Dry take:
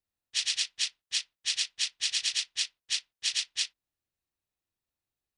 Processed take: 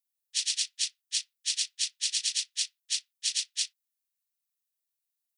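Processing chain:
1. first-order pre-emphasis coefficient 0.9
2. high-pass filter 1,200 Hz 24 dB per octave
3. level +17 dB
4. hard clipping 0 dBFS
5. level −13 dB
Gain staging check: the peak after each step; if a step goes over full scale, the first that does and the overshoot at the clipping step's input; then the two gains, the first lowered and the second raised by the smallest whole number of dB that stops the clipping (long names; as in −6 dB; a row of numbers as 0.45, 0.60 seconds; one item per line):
−19.0, −19.5, −2.5, −2.5, −15.5 dBFS
no step passes full scale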